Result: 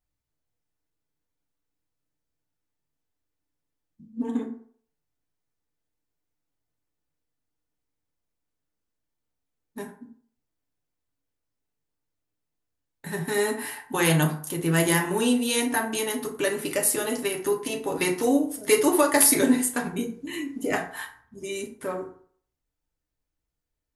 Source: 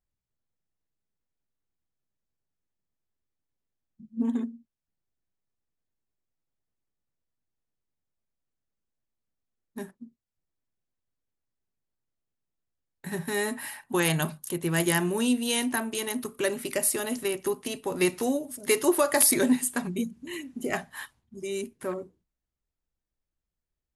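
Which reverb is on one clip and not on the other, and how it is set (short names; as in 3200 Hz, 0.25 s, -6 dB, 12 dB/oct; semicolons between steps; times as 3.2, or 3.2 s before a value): FDN reverb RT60 0.55 s, low-frequency decay 0.75×, high-frequency decay 0.5×, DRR 0.5 dB; gain +1 dB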